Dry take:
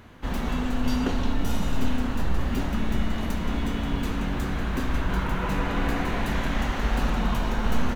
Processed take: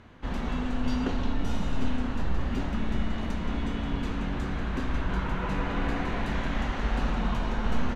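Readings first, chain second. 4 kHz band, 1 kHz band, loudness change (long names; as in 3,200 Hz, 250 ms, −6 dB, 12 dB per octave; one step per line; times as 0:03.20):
−4.5 dB, −3.5 dB, −3.0 dB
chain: high-frequency loss of the air 70 metres
level −3 dB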